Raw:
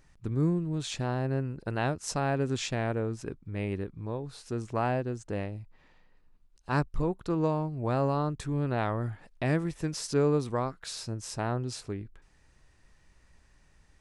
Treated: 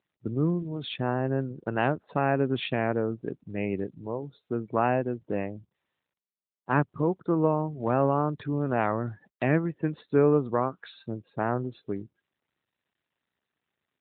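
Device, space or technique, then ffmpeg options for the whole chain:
mobile call with aggressive noise cancelling: -af "highpass=150,afftdn=nr=34:nf=-46,volume=1.78" -ar 8000 -c:a libopencore_amrnb -b:a 12200

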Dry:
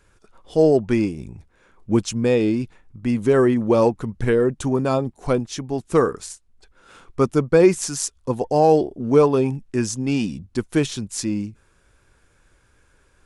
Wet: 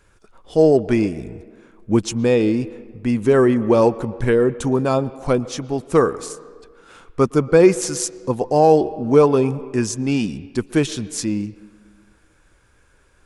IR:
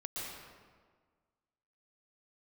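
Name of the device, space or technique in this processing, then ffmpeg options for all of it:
filtered reverb send: -filter_complex "[0:a]asplit=2[s0][s1];[s1]highpass=230,lowpass=3600[s2];[1:a]atrim=start_sample=2205[s3];[s2][s3]afir=irnorm=-1:irlink=0,volume=0.158[s4];[s0][s4]amix=inputs=2:normalize=0,volume=1.19"

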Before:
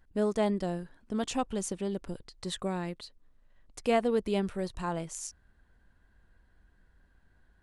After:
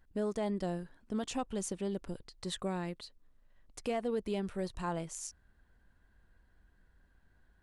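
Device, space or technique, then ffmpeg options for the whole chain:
soft clipper into limiter: -af "asoftclip=type=tanh:threshold=0.188,alimiter=limit=0.075:level=0:latency=1:release=226,volume=0.75"

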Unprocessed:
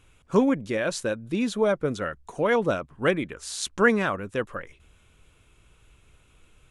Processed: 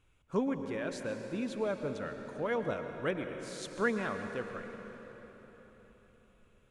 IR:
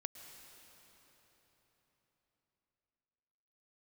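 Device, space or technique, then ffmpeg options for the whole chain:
swimming-pool hall: -filter_complex "[1:a]atrim=start_sample=2205[s0];[0:a][s0]afir=irnorm=-1:irlink=0,highshelf=f=4700:g=-6,volume=0.447"

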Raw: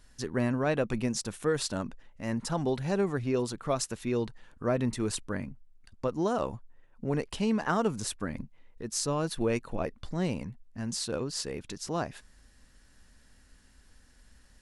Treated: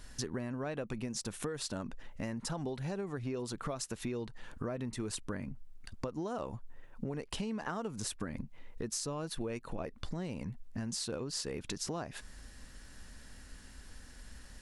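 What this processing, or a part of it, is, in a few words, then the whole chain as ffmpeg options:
serial compression, peaks first: -af "acompressor=threshold=0.0141:ratio=6,acompressor=threshold=0.00501:ratio=2,volume=2.37"

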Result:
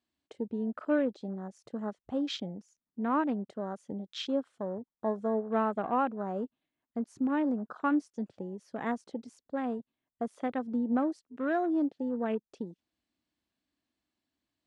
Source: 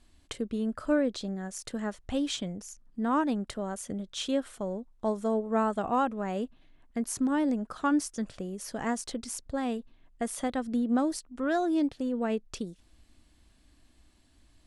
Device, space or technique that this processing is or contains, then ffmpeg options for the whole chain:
over-cleaned archive recording: -af "highpass=160,lowpass=6200,afwtdn=0.00891,volume=0.841"

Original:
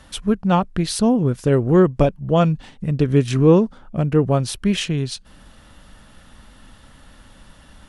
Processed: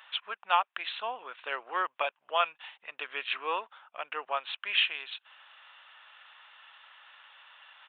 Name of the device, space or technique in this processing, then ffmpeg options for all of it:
musical greeting card: -af "aresample=8000,aresample=44100,highpass=f=890:w=0.5412,highpass=f=890:w=1.3066,equalizer=f=2600:t=o:w=0.37:g=5.5,volume=0.841"

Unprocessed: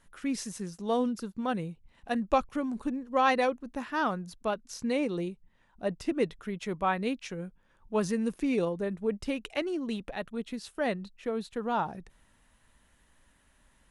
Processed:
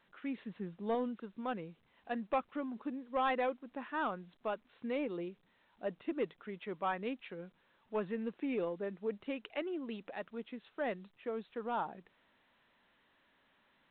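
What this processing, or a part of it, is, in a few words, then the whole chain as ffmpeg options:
telephone: -filter_complex "[0:a]asettb=1/sr,asplit=3[s0][s1][s2];[s0]atrim=end=0.374[s3];[s1]atrim=start=0.37:end=0.95,asetpts=PTS-STARTPTS,afade=t=in:d=0.004:c=qsin,afade=t=out:st=0.576:d=0.004:c=qsin,lowshelf=f=230:g=11[s4];[s2]atrim=start=0.946[s5];[s3][s4]acrossfade=d=0.004:c1=hsin:c2=qsin[s6];[s6][s5]acrossfade=d=0.004:c1=qsin:c2=hsin,highpass=250,lowpass=3400,asoftclip=type=tanh:threshold=0.112,volume=0.531" -ar 8000 -c:a pcm_alaw

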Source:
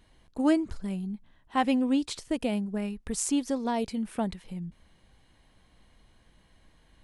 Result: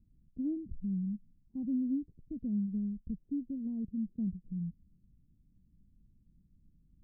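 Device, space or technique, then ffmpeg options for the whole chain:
the neighbour's flat through the wall: -af "lowpass=f=250:w=0.5412,lowpass=f=250:w=1.3066,equalizer=f=170:t=o:w=0.77:g=4.5,volume=0.631"

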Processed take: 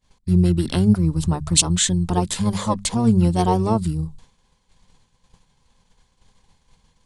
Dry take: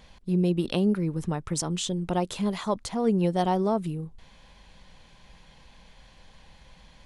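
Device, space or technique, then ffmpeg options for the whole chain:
octave pedal: -filter_complex "[0:a]bandreject=f=50:t=h:w=6,bandreject=f=100:t=h:w=6,bandreject=f=150:t=h:w=6,bandreject=f=200:t=h:w=6,agate=range=0.0224:threshold=0.00891:ratio=3:detection=peak,equalizer=f=125:t=o:w=1:g=5,equalizer=f=250:t=o:w=1:g=4,equalizer=f=500:t=o:w=1:g=-10,equalizer=f=1000:t=o:w=1:g=7,equalizer=f=2000:t=o:w=1:g=-11,equalizer=f=8000:t=o:w=1:g=12,asplit=2[s0][s1];[s1]asetrate=22050,aresample=44100,atempo=2,volume=0.631[s2];[s0][s2]amix=inputs=2:normalize=0,volume=1.68"

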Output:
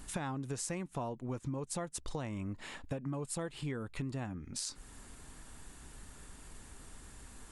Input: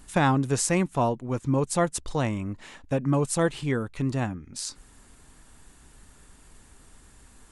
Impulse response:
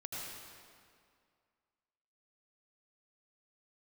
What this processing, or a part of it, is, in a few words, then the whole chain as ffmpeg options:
serial compression, peaks first: -filter_complex "[0:a]acompressor=threshold=0.0282:ratio=6,acompressor=threshold=0.00562:ratio=1.5,asettb=1/sr,asplit=3[s0][s1][s2];[s0]atrim=end=2.584[s3];[s1]atrim=start=2.58:end=4.25,asetpts=PTS-STARTPTS,afade=t=in:d=0.004:c=qsin,afade=t=out:st=1.666:d=0.004:c=qsin,bandreject=f=6000:w=8.1[s4];[s2]atrim=start=4.246[s5];[s3][s4]acrossfade=d=0.004:c1=hsin:c2=qsin[s6];[s6][s5]acrossfade=d=0.004:c1=qsin:c2=hsin,volume=1.12"

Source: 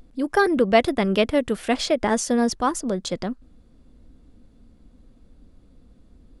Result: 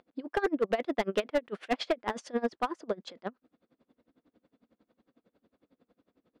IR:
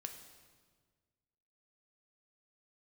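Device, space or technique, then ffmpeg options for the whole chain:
helicopter radio: -af "highpass=340,lowpass=3000,aeval=exprs='val(0)*pow(10,-26*(0.5-0.5*cos(2*PI*11*n/s))/20)':c=same,asoftclip=type=hard:threshold=0.0891"

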